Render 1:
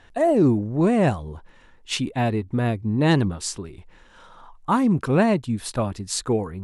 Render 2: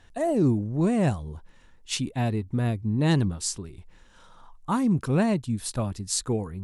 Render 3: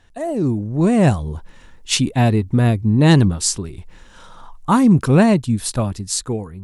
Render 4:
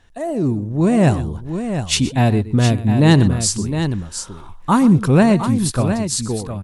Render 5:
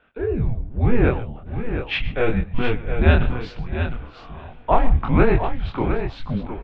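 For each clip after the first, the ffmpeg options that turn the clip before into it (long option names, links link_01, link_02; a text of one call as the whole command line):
ffmpeg -i in.wav -af "bass=frequency=250:gain=6,treble=frequency=4000:gain=8,volume=-7dB" out.wav
ffmpeg -i in.wav -af "dynaudnorm=framelen=240:gausssize=7:maxgain=11.5dB,volume=1dB" out.wav
ffmpeg -i in.wav -af "aecho=1:1:122|711:0.158|0.376" out.wav
ffmpeg -i in.wav -af "highpass=frequency=210:width_type=q:width=0.5412,highpass=frequency=210:width_type=q:width=1.307,lowpass=frequency=3200:width_type=q:width=0.5176,lowpass=frequency=3200:width_type=q:width=0.7071,lowpass=frequency=3200:width_type=q:width=1.932,afreqshift=-240,flanger=delay=20:depth=6.9:speed=1.1,aecho=1:1:648|1296|1944|2592:0.0841|0.0421|0.021|0.0105,volume=3.5dB" out.wav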